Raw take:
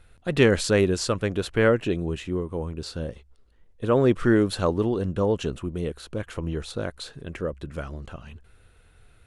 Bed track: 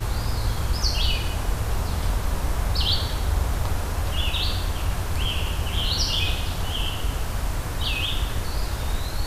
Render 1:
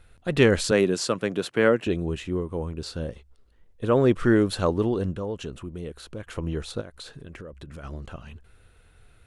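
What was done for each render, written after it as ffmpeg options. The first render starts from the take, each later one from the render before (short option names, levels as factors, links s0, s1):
-filter_complex "[0:a]asettb=1/sr,asplit=3[s0][s1][s2];[s0]atrim=end=0.714[s3];[s1]atrim=start=0.71:end=1.87,asetpts=PTS-STARTPTS,afade=t=in:d=0.004:c=qsin,afade=t=out:st=1.156:d=0.004:c=qsin,highpass=f=140:w=0.5412,highpass=f=140:w=1.3066[s4];[s2]atrim=start=1.866[s5];[s3][s4]acrossfade=d=0.004:c1=hsin:c2=qsin[s6];[s6][s5]acrossfade=d=0.004:c1=qsin:c2=hsin,asettb=1/sr,asplit=3[s7][s8][s9];[s7]atrim=end=5.144[s10];[s8]atrim=start=5.14:end=6.27,asetpts=PTS-STARTPTS,afade=t=in:d=0.004:c=qsin,afade=t=out:st=1.126:d=0.004:c=qsin,acompressor=threshold=0.00891:ratio=1.5:attack=3.2:release=140:knee=1:detection=peak[s11];[s9]atrim=start=6.266[s12];[s10][s11]acrossfade=d=0.004:c1=hsin:c2=qsin[s13];[s13][s12]acrossfade=d=0.004:c1=qsin:c2=hsin,asplit=3[s14][s15][s16];[s14]afade=t=out:st=6.8:d=0.02[s17];[s15]acompressor=threshold=0.0158:ratio=10:attack=3.2:release=140:knee=1:detection=peak,afade=t=in:st=6.8:d=0.02,afade=t=out:st=7.83:d=0.02[s18];[s16]afade=t=in:st=7.83:d=0.02[s19];[s17][s18][s19]amix=inputs=3:normalize=0"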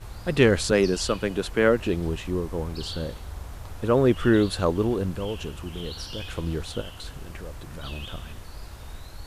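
-filter_complex "[1:a]volume=0.2[s0];[0:a][s0]amix=inputs=2:normalize=0"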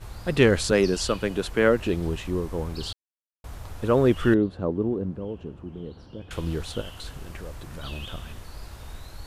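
-filter_complex "[0:a]asettb=1/sr,asplit=3[s0][s1][s2];[s0]atrim=end=4.344[s3];[s1]atrim=start=4.34:end=6.31,asetpts=PTS-STARTPTS,afade=t=in:d=0.004:c=qsin,afade=t=out:st=1.966:d=0.004:c=qsin,bandpass=f=240:t=q:w=0.74[s4];[s2]atrim=start=6.306[s5];[s3][s4]acrossfade=d=0.004:c1=hsin:c2=qsin[s6];[s6][s5]acrossfade=d=0.004:c1=qsin:c2=hsin,asplit=3[s7][s8][s9];[s7]atrim=end=2.93,asetpts=PTS-STARTPTS,afade=t=out:st=2.926:d=0.004:c=hsin[s10];[s8]atrim=start=2.93:end=3.44,asetpts=PTS-STARTPTS,volume=0[s11];[s9]atrim=start=3.44,asetpts=PTS-STARTPTS,afade=t=in:d=0.004:c=hsin[s12];[s10][s11][s12]concat=n=3:v=0:a=1"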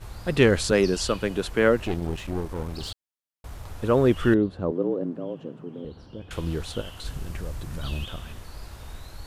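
-filter_complex "[0:a]asettb=1/sr,asplit=3[s0][s1][s2];[s0]atrim=end=1.854[s3];[s1]atrim=start=1.85:end=3.66,asetpts=PTS-STARTPTS,afade=t=in:d=0.004:c=qsin,afade=t=out:st=1.806:d=0.004:c=qsin,aeval=exprs='clip(val(0),-1,0.0188)':c=same[s4];[s2]atrim=start=3.656[s5];[s3][s4]acrossfade=d=0.004:c1=hsin:c2=qsin[s6];[s6][s5]acrossfade=d=0.004:c1=qsin:c2=hsin,asettb=1/sr,asplit=3[s7][s8][s9];[s7]atrim=end=4.714[s10];[s8]atrim=start=4.71:end=5.85,asetpts=PTS-STARTPTS,afade=t=in:d=0.004:c=qsin,afade=t=out:st=1.136:d=0.004:c=qsin,afreqshift=80[s11];[s9]atrim=start=5.846[s12];[s10][s11]acrossfade=d=0.004:c1=hsin:c2=qsin[s13];[s13][s12]acrossfade=d=0.004:c1=qsin:c2=hsin,asettb=1/sr,asplit=3[s14][s15][s16];[s14]atrim=end=7.054[s17];[s15]atrim=start=7.05:end=8.04,asetpts=PTS-STARTPTS,afade=t=in:d=0.004:c=qsin,afade=t=out:st=0.986:d=0.004:c=qsin,bass=f=250:g=6,treble=f=4000:g=3[s18];[s16]atrim=start=8.036[s19];[s17][s18]acrossfade=d=0.004:c1=hsin:c2=qsin[s20];[s20][s19]acrossfade=d=0.004:c1=qsin:c2=hsin"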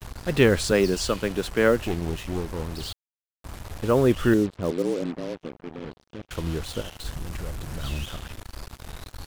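-af "acrusher=bits=5:mix=0:aa=0.5"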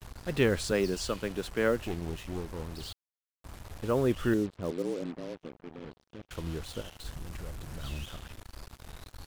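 -af "volume=0.422"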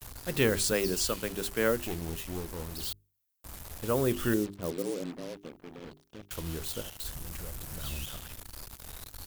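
-af "aemphasis=mode=production:type=50fm,bandreject=f=50:t=h:w=6,bandreject=f=100:t=h:w=6,bandreject=f=150:t=h:w=6,bandreject=f=200:t=h:w=6,bandreject=f=250:t=h:w=6,bandreject=f=300:t=h:w=6,bandreject=f=350:t=h:w=6,bandreject=f=400:t=h:w=6"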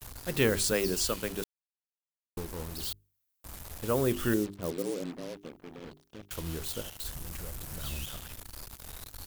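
-filter_complex "[0:a]asplit=3[s0][s1][s2];[s0]atrim=end=1.44,asetpts=PTS-STARTPTS,afade=t=out:st=1.436:d=0.004:c=hsin[s3];[s1]atrim=start=1.44:end=2.37,asetpts=PTS-STARTPTS,volume=0[s4];[s2]atrim=start=2.37,asetpts=PTS-STARTPTS,afade=t=in:d=0.004:c=hsin[s5];[s3][s4][s5]concat=n=3:v=0:a=1"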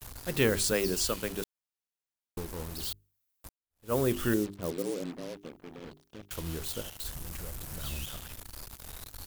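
-filter_complex "[0:a]asplit=2[s0][s1];[s0]atrim=end=3.49,asetpts=PTS-STARTPTS,afade=t=out:st=3.486:d=0.004:c=hsin[s2];[s1]atrim=start=3.49,asetpts=PTS-STARTPTS,afade=t=in:d=0.44:c=exp[s3];[s2][s3]concat=n=2:v=0:a=1"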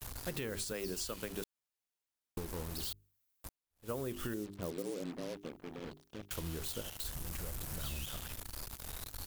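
-af "alimiter=limit=0.0944:level=0:latency=1:release=255,acompressor=threshold=0.0158:ratio=6"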